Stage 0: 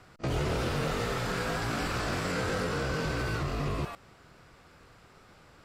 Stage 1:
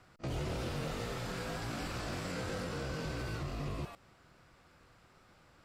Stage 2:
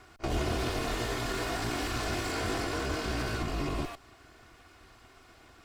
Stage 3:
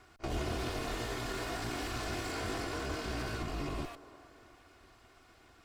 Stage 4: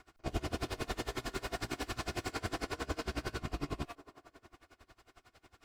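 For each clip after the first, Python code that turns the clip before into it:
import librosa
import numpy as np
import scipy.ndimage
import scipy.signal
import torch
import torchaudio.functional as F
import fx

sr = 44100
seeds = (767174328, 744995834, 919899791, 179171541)

y1 = fx.notch(x, sr, hz=430.0, q=12.0)
y1 = fx.dynamic_eq(y1, sr, hz=1400.0, q=1.1, threshold_db=-45.0, ratio=4.0, max_db=-4)
y1 = y1 * 10.0 ** (-6.5 / 20.0)
y2 = fx.lower_of_two(y1, sr, delay_ms=2.8)
y2 = y2 * 10.0 ** (8.5 / 20.0)
y3 = fx.echo_wet_bandpass(y2, sr, ms=349, feedback_pct=49, hz=660.0, wet_db=-14.0)
y3 = y3 * 10.0 ** (-5.0 / 20.0)
y4 = y3 * 10.0 ** (-25 * (0.5 - 0.5 * np.cos(2.0 * np.pi * 11.0 * np.arange(len(y3)) / sr)) / 20.0)
y4 = y4 * 10.0 ** (4.0 / 20.0)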